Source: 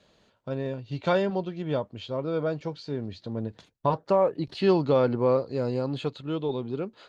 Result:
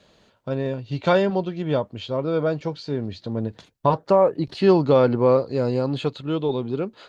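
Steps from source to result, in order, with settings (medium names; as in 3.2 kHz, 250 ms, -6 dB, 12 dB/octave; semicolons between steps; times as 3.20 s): 3.95–4.91 s: dynamic bell 3.2 kHz, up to -4 dB, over -46 dBFS, Q 1.1; trim +5.5 dB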